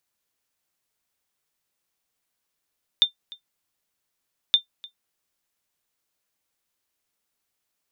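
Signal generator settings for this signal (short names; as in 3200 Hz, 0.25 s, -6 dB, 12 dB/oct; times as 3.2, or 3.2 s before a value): sonar ping 3590 Hz, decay 0.11 s, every 1.52 s, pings 2, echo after 0.30 s, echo -23 dB -7.5 dBFS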